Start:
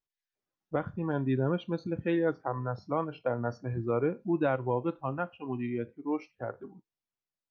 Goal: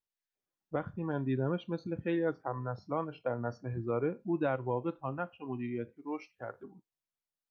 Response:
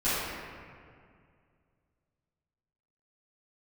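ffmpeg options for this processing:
-filter_complex "[0:a]asettb=1/sr,asplit=3[s0][s1][s2];[s0]atrim=end=5.964[s3];[s1]atrim=start=5.96:end=6.63,asetpts=PTS-STARTPTS,afade=t=in:d=0.004:c=qsin,afade=t=out:st=0.666:d=0.004:c=qsin,tiltshelf=f=970:g=-4.5[s4];[s2]atrim=start=6.626[s5];[s3][s4]acrossfade=d=0.004:c1=hsin:c2=qsin[s6];[s6][s5]acrossfade=d=0.004:c1=qsin:c2=hsin,volume=0.668"

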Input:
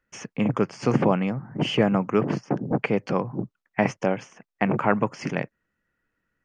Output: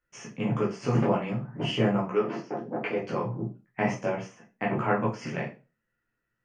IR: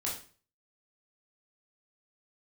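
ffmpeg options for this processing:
-filter_complex "[0:a]asplit=3[s0][s1][s2];[s0]afade=t=out:st=2.07:d=0.02[s3];[s1]highpass=290,lowpass=5900,afade=t=in:st=2.07:d=0.02,afade=t=out:st=2.97:d=0.02[s4];[s2]afade=t=in:st=2.97:d=0.02[s5];[s3][s4][s5]amix=inputs=3:normalize=0[s6];[1:a]atrim=start_sample=2205,asetrate=61740,aresample=44100[s7];[s6][s7]afir=irnorm=-1:irlink=0,volume=0.596"

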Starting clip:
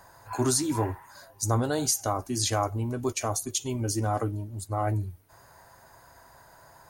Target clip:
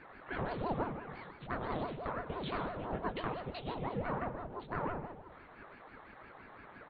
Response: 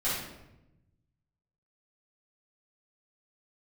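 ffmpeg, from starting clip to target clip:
-filter_complex "[0:a]highpass=f=210:w=0.5412,highpass=f=210:w=1.3066,aecho=1:1:6.5:0.45,acompressor=threshold=0.0158:ratio=6,flanger=delay=0.8:depth=8.2:regen=-61:speed=1.9:shape=sinusoidal,aeval=exprs='0.0398*(cos(1*acos(clip(val(0)/0.0398,-1,1)))-cos(1*PI/2))+0.00398*(cos(4*acos(clip(val(0)/0.0398,-1,1)))-cos(4*PI/2))':c=same,flanger=delay=17.5:depth=7.1:speed=0.9,asplit=2[s0][s1];[s1]adelay=155,lowpass=f=1900:p=1,volume=0.2,asplit=2[s2][s3];[s3]adelay=155,lowpass=f=1900:p=1,volume=0.51,asplit=2[s4][s5];[s5]adelay=155,lowpass=f=1900:p=1,volume=0.51,asplit=2[s6][s7];[s7]adelay=155,lowpass=f=1900:p=1,volume=0.51,asplit=2[s8][s9];[s9]adelay=155,lowpass=f=1900:p=1,volume=0.51[s10];[s0][s2][s4][s6][s8][s10]amix=inputs=6:normalize=0,asplit=2[s11][s12];[1:a]atrim=start_sample=2205,adelay=86[s13];[s12][s13]afir=irnorm=-1:irlink=0,volume=0.126[s14];[s11][s14]amix=inputs=2:normalize=0,aresample=8000,aresample=44100,aeval=exprs='val(0)*sin(2*PI*430*n/s+430*0.7/5.9*sin(2*PI*5.9*n/s))':c=same,volume=3.35"

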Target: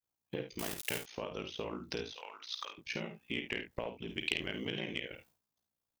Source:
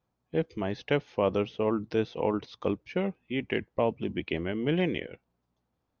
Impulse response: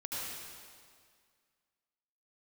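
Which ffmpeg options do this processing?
-filter_complex "[0:a]acompressor=threshold=0.01:ratio=12,asettb=1/sr,asplit=3[s0][s1][s2];[s0]atrim=end=0.594[s3];[s1]atrim=start=0.59:end=1.06,asetpts=PTS-STARTPTS,afade=t=in:d=0.004:c=qsin,afade=t=out:st=0.466:d=0.004:c=qsin,aeval=exprs='val(0)*gte(abs(val(0)),0.00422)':c=same[s4];[s2]atrim=start=1.056[s5];[s3][s4]acrossfade=d=0.004:c1=hsin:c2=qsin[s6];[s6][s5]acrossfade=d=0.004:c1=qsin:c2=hsin,crystalizer=i=7.5:c=0,agate=range=0.0224:threshold=0.001:ratio=3:detection=peak,aeval=exprs='val(0)*sin(2*PI*29*n/s)':c=same,aecho=1:1:51|75:0.398|0.224,asoftclip=type=tanh:threshold=0.0596,asettb=1/sr,asplit=3[s7][s8][s9];[s7]atrim=end=2.154[s10];[s8]atrim=start=2.15:end=2.78,asetpts=PTS-STARTPTS,afade=t=in:d=0.004:c=qsin,afade=t=out:st=0.626:d=0.004:c=qsin,highpass=1100[s11];[s9]atrim=start=2.776[s12];[s10][s11]acrossfade=d=0.004:c1=hsin:c2=qsin[s13];[s13][s12]acrossfade=d=0.004:c1=qsin:c2=hsin,asplit=3[s14][s15][s16];[s14]afade=t=out:st=4.08:d=0.02[s17];[s15]adynamicequalizer=threshold=0.00224:dfrequency=2600:dqfactor=0.7:tfrequency=2600:tqfactor=0.7:attack=5:release=100:ratio=0.375:range=3.5:mode=boostabove:tftype=highshelf,afade=t=in:st=4.08:d=0.02,afade=t=out:st=4.79:d=0.02[s18];[s16]afade=t=in:st=4.79:d=0.02[s19];[s17][s18][s19]amix=inputs=3:normalize=0,volume=1.68"

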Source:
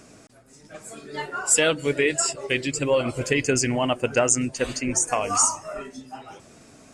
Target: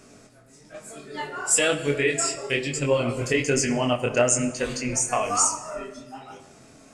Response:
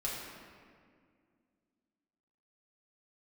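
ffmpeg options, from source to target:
-filter_complex "[0:a]flanger=delay=20:depth=6.1:speed=1.1,asplit=2[s0][s1];[1:a]atrim=start_sample=2205,afade=t=out:st=0.37:d=0.01,atrim=end_sample=16758[s2];[s1][s2]afir=irnorm=-1:irlink=0,volume=0.335[s3];[s0][s3]amix=inputs=2:normalize=0"

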